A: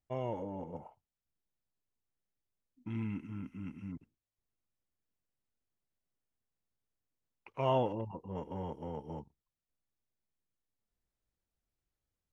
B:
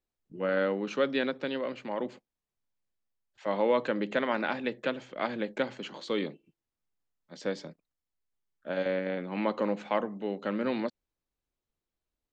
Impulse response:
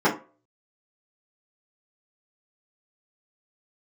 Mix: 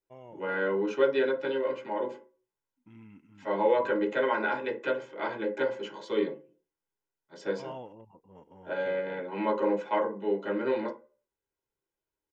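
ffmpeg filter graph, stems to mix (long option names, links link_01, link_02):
-filter_complex "[0:a]volume=-11dB[link_01];[1:a]aecho=1:1:2:0.6,volume=-4.5dB,asplit=2[link_02][link_03];[link_03]volume=-15.5dB[link_04];[2:a]atrim=start_sample=2205[link_05];[link_04][link_05]afir=irnorm=-1:irlink=0[link_06];[link_01][link_02][link_06]amix=inputs=3:normalize=0,lowshelf=frequency=100:gain=-12,equalizer=frequency=4300:width=5.3:gain=-6.5"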